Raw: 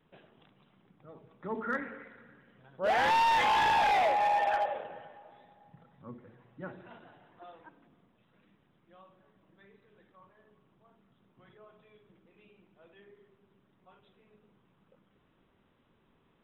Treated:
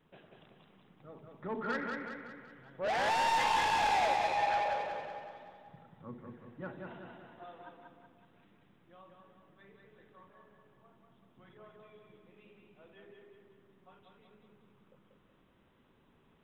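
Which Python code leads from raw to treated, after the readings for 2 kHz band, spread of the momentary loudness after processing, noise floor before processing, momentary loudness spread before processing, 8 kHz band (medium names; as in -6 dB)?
-3.0 dB, 22 LU, -70 dBFS, 21 LU, no reading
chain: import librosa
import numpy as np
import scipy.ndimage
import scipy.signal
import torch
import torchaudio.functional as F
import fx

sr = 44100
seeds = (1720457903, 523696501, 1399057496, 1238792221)

p1 = 10.0 ** (-29.5 / 20.0) * np.tanh(x / 10.0 ** (-29.5 / 20.0))
y = p1 + fx.echo_feedback(p1, sr, ms=187, feedback_pct=49, wet_db=-4, dry=0)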